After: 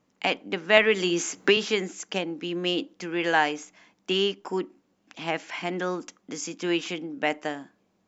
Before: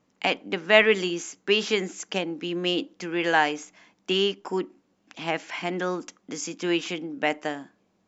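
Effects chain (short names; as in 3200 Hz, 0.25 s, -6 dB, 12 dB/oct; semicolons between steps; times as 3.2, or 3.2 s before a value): 0.77–1.57 three-band squash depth 100%; gain -1 dB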